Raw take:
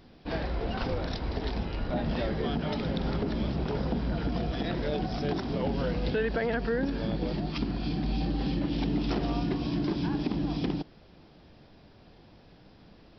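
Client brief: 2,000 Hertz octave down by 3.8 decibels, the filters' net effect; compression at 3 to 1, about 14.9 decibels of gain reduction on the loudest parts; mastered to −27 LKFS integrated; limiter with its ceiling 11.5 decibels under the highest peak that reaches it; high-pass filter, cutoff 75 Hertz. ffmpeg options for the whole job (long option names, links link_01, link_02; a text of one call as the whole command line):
ffmpeg -i in.wav -af "highpass=75,equalizer=frequency=2000:width_type=o:gain=-5,acompressor=threshold=-47dB:ratio=3,volume=25dB,alimiter=limit=-18.5dB:level=0:latency=1" out.wav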